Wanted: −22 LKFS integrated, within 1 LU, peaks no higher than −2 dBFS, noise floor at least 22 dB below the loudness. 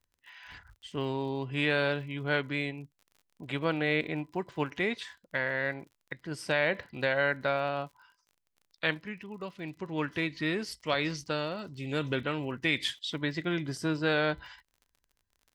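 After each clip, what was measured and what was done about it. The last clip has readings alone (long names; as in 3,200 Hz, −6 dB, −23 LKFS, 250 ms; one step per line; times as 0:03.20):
crackle rate 46 per second; integrated loudness −32.0 LKFS; sample peak −13.5 dBFS; target loudness −22.0 LKFS
→ click removal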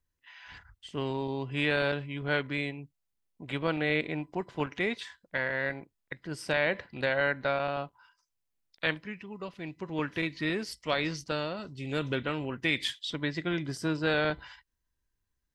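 crackle rate 0 per second; integrated loudness −32.0 LKFS; sample peak −13.5 dBFS; target loudness −22.0 LKFS
→ level +10 dB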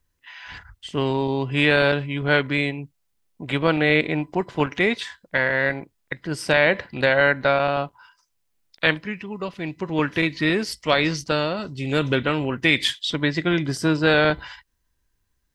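integrated loudness −22.0 LKFS; sample peak −3.5 dBFS; background noise floor −72 dBFS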